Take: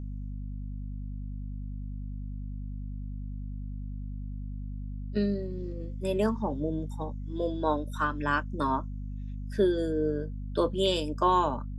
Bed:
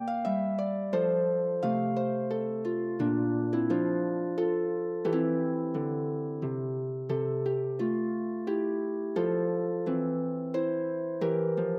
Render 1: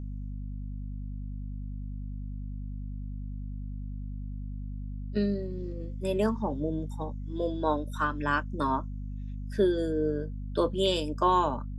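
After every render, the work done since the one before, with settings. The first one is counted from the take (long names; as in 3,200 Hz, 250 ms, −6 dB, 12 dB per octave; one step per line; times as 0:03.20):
no processing that can be heard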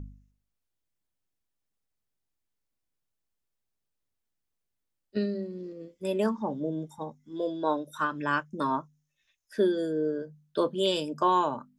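hum removal 50 Hz, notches 5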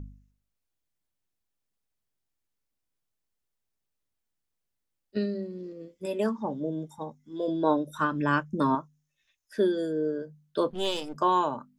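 0:06.05–0:06.45: notch comb filter 180 Hz
0:07.48–0:08.75: low-shelf EQ 420 Hz +9.5 dB
0:10.70–0:11.16: gain on one half-wave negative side −12 dB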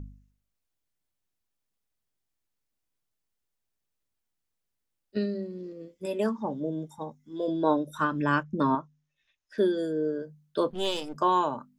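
0:08.43–0:09.58: low-pass filter 4,500 Hz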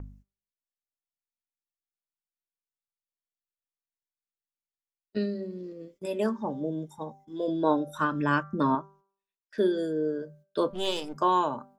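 noise gate −54 dBFS, range −24 dB
hum removal 195.7 Hz, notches 12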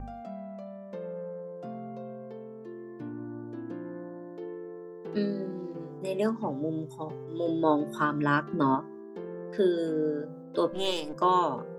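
mix in bed −11.5 dB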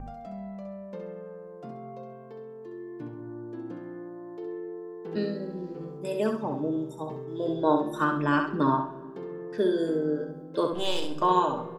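repeating echo 66 ms, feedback 28%, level −6 dB
rectangular room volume 3,100 cubic metres, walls mixed, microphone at 0.46 metres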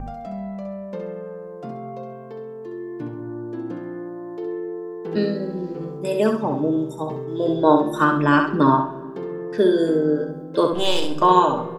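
level +8 dB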